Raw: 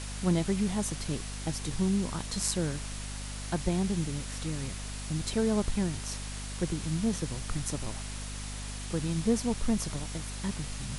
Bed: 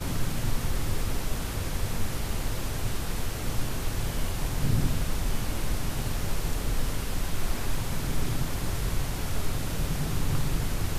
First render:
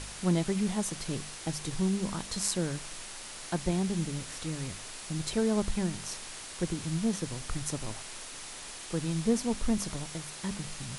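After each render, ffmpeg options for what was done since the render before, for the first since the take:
-af "bandreject=f=50:t=h:w=4,bandreject=f=100:t=h:w=4,bandreject=f=150:t=h:w=4,bandreject=f=200:t=h:w=4,bandreject=f=250:t=h:w=4"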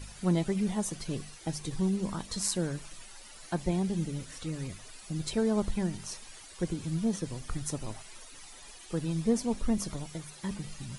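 -af "afftdn=nr=13:nf=-44"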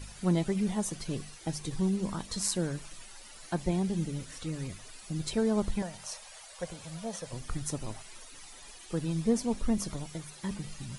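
-filter_complex "[0:a]asettb=1/sr,asplit=3[a][b][c];[a]atrim=end=5.824[d];[b]atrim=start=5.82:end=7.33,asetpts=PTS-STARTPTS,afade=t=in:d=0.004:c=qsin,afade=t=out:st=1.506:d=0.004:c=qsin,lowshelf=f=450:t=q:w=3:g=-9[e];[c]atrim=start=7.326[f];[d][e]acrossfade=d=0.004:c1=hsin:c2=qsin[g];[g][f]acrossfade=d=0.004:c1=qsin:c2=hsin"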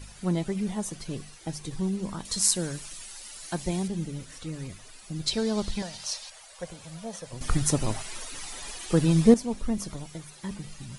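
-filter_complex "[0:a]asettb=1/sr,asplit=3[a][b][c];[a]atrim=end=2.254[d];[b]atrim=start=2.25:end=3.88,asetpts=PTS-STARTPTS,afade=t=in:d=0.004:c=qsin,afade=t=out:st=1.626:d=0.004:c=qsin,highshelf=f=3k:g=10[e];[c]atrim=start=3.876[f];[d][e]acrossfade=d=0.004:c1=hsin:c2=qsin[g];[g][f]acrossfade=d=0.004:c1=qsin:c2=hsin,asettb=1/sr,asplit=3[h][i][j];[h]atrim=end=5.264[k];[i]atrim=start=5.26:end=6.3,asetpts=PTS-STARTPTS,afade=t=in:d=0.004:c=qsin,afade=t=out:st=1.036:d=0.004:c=qsin,equalizer=f=4.4k:t=o:w=1.3:g=12.5[l];[j]atrim=start=6.296[m];[k][l]acrossfade=d=0.004:c1=hsin:c2=qsin[n];[n][m]acrossfade=d=0.004:c1=qsin:c2=hsin,asplit=3[o][p][q];[o]atrim=end=7.412[r];[p]atrim=start=7.408:end=9.342,asetpts=PTS-STARTPTS,volume=10.5dB[s];[q]atrim=start=9.338[t];[r][s]acrossfade=d=0.004:c1=hsin:c2=hsin[u];[u][t]acrossfade=d=0.004:c1=hsin:c2=hsin"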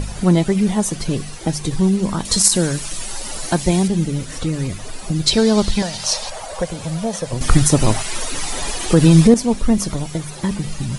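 -filter_complex "[0:a]acrossover=split=940[a][b];[a]acompressor=mode=upward:threshold=-29dB:ratio=2.5[c];[c][b]amix=inputs=2:normalize=0,alimiter=level_in=13dB:limit=-1dB:release=50:level=0:latency=1"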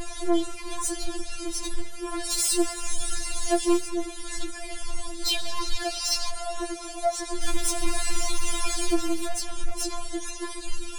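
-af "asoftclip=type=tanh:threshold=-18.5dB,afftfilt=real='re*4*eq(mod(b,16),0)':imag='im*4*eq(mod(b,16),0)':win_size=2048:overlap=0.75"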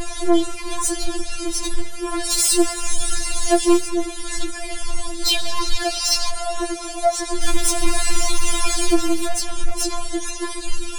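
-af "volume=7dB"

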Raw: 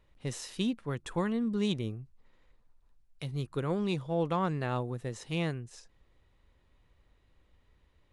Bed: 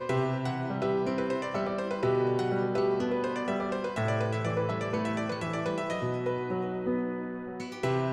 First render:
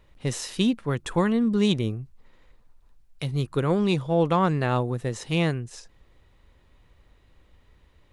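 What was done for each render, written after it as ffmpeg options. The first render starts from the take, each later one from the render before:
-af "volume=8.5dB"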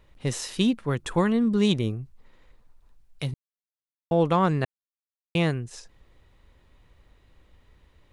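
-filter_complex "[0:a]asplit=5[a][b][c][d][e];[a]atrim=end=3.34,asetpts=PTS-STARTPTS,afade=t=out:st=3.336:d=0.004:c=hsin[f];[b]atrim=start=3.34:end=4.11,asetpts=PTS-STARTPTS,volume=0[g];[c]atrim=start=4.11:end=4.65,asetpts=PTS-STARTPTS,afade=t=in:d=0.004:c=hsin,afade=t=out:st=0.536:d=0.004:c=hsin[h];[d]atrim=start=4.65:end=5.35,asetpts=PTS-STARTPTS,volume=0[i];[e]atrim=start=5.35,asetpts=PTS-STARTPTS,afade=t=in:d=0.004:c=hsin[j];[f][g][h][i][j]concat=n=5:v=0:a=1"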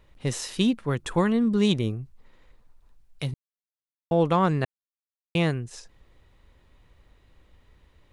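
-af anull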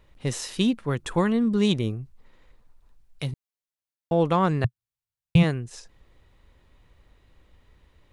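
-filter_complex "[0:a]asplit=3[a][b][c];[a]afade=t=out:st=4.64:d=0.02[d];[b]lowshelf=f=180:t=q:w=3:g=13.5,afade=t=in:st=4.64:d=0.02,afade=t=out:st=5.42:d=0.02[e];[c]afade=t=in:st=5.42:d=0.02[f];[d][e][f]amix=inputs=3:normalize=0"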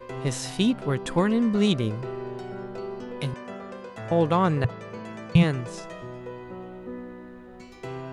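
-filter_complex "[1:a]volume=-7.5dB[a];[0:a][a]amix=inputs=2:normalize=0"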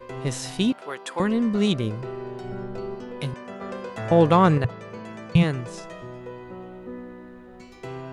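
-filter_complex "[0:a]asettb=1/sr,asplit=3[a][b][c];[a]atrim=end=0.724[d];[b]atrim=start=0.72:end=1.2,asetpts=PTS-STARTPTS,afade=t=in:d=0.004:c=qsin,afade=t=out:st=0.476:d=0.004:c=qsin,highpass=610[e];[c]atrim=start=1.196[f];[d][e]acrossfade=d=0.004:c1=hsin:c2=qsin[g];[g][f]acrossfade=d=0.004:c1=qsin:c2=hsin,asettb=1/sr,asplit=3[h][i][j];[h]atrim=end=2.444[k];[i]atrim=start=2.44:end=2.95,asetpts=PTS-STARTPTS,afade=t=in:d=0.004:c=qsin,afade=t=out:st=0.506:d=0.004:c=qsin,lowshelf=f=160:g=10.5[l];[j]atrim=start=2.946[m];[k][l]acrossfade=d=0.004:c1=hsin:c2=qsin[n];[n][m]acrossfade=d=0.004:c1=qsin:c2=hsin,asettb=1/sr,asplit=3[o][p][q];[o]atrim=end=3.614[r];[p]atrim=start=3.61:end=4.58,asetpts=PTS-STARTPTS,afade=t=in:d=0.004:c=qsin,afade=t=out:st=0.966:d=0.004:c=qsin,acontrast=35[s];[q]atrim=start=4.576[t];[r][s]acrossfade=d=0.004:c1=hsin:c2=qsin[u];[u][t]acrossfade=d=0.004:c1=qsin:c2=hsin"

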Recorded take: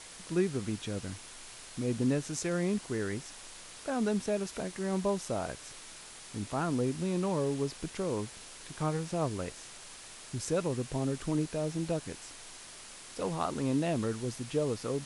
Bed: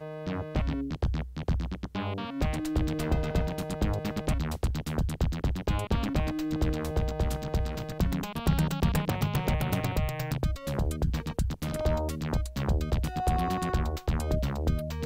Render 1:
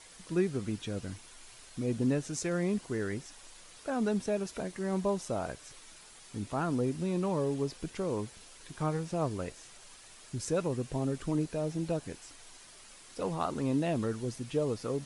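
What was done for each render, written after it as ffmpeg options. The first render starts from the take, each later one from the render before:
-af "afftdn=nr=7:nf=-49"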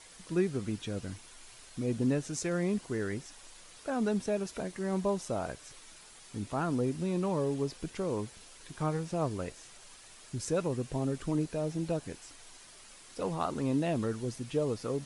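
-af anull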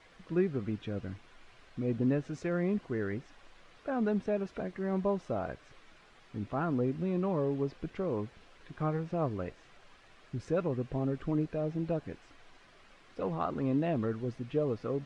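-af "lowpass=2.4k,bandreject=f=910:w=13"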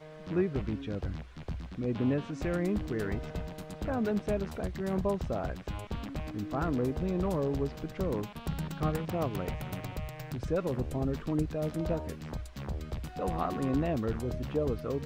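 -filter_complex "[1:a]volume=-9.5dB[a];[0:a][a]amix=inputs=2:normalize=0"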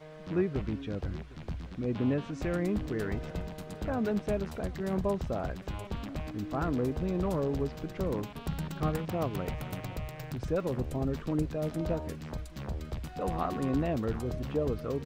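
-af "aecho=1:1:756:0.0944"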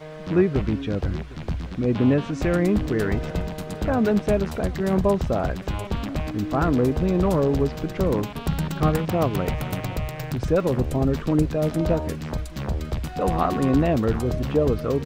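-af "volume=10dB"

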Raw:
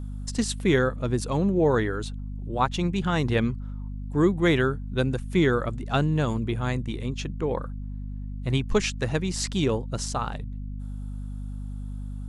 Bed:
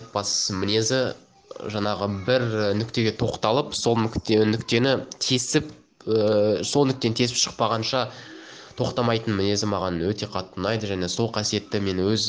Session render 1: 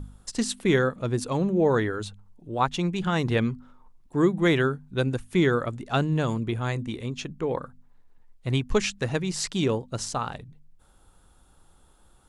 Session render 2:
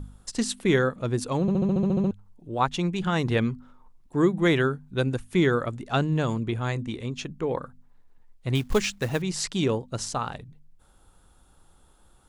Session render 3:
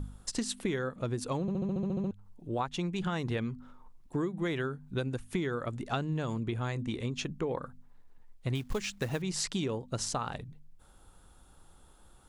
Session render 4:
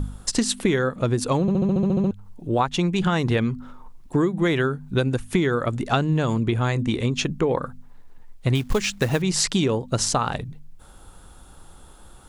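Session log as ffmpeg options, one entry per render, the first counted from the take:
-af "bandreject=f=50:t=h:w=4,bandreject=f=100:t=h:w=4,bandreject=f=150:t=h:w=4,bandreject=f=200:t=h:w=4,bandreject=f=250:t=h:w=4"
-filter_complex "[0:a]asettb=1/sr,asplit=3[a][b][c];[a]atrim=end=5.914[d];[b]atrim=start=5.91:end=7.15,asetpts=PTS-STARTPTS,afade=t=in:d=0.004:c=qsin,afade=t=out:st=1.236:d=0.004:c=qsin,lowpass=f=9.3k:w=0.5412,lowpass=f=9.3k:w=1.3066[e];[c]atrim=start=7.146[f];[d][e]acrossfade=d=0.004:c1=hsin:c2=qsin[g];[g][f]acrossfade=d=0.004:c1=qsin:c2=hsin,asettb=1/sr,asplit=3[h][i][j];[h]atrim=end=8.554[k];[i]atrim=start=8.55:end=9.22,asetpts=PTS-STARTPTS,afade=t=in:d=0.004:c=qsin,afade=t=out:st=0.666:d=0.004:c=qsin,acrusher=bits=5:mode=log:mix=0:aa=0.000001[l];[j]atrim=start=9.216[m];[k][l]acrossfade=d=0.004:c1=hsin:c2=qsin[n];[n][m]acrossfade=d=0.004:c1=qsin:c2=hsin,asplit=11[o][p][q][r][s][t][u][v][w][x][y];[o]atrim=end=1.482[z];[p]atrim=start=1.408:end=1.482[aa];[q]atrim=start=1.408:end=1.482[ab];[r]atrim=start=1.408:end=1.482[ac];[s]atrim=start=1.408:end=1.482[ad];[t]atrim=start=1.408:end=1.482[ae];[u]atrim=start=1.408:end=1.482[af];[v]atrim=start=1.408:end=1.482[ag];[w]atrim=start=1.408:end=1.482[ah];[x]atrim=start=1.408:end=1.482[ai];[y]atrim=start=2.108[aj];[z][aa]acrossfade=d=0.004:c1=hsin:c2=hsin[ak];[ak][ab]acrossfade=d=0.004:c1=hsin:c2=hsin[al];[al][ac]acrossfade=d=0.004:c1=hsin:c2=hsin[am];[am][ad]acrossfade=d=0.004:c1=hsin:c2=hsin[an];[an][ae]acrossfade=d=0.004:c1=hsin:c2=hsin[ao];[ao][af]acrossfade=d=0.004:c1=hsin:c2=hsin[ap];[ap][ag]acrossfade=d=0.004:c1=hsin:c2=hsin[aq];[aq][ah]acrossfade=d=0.004:c1=hsin:c2=hsin[ar];[ar][ai]acrossfade=d=0.004:c1=hsin:c2=hsin[as];[as][aj]acrossfade=d=0.004:c1=hsin:c2=hsin"
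-af "acompressor=threshold=-29dB:ratio=10"
-af "volume=11.5dB"

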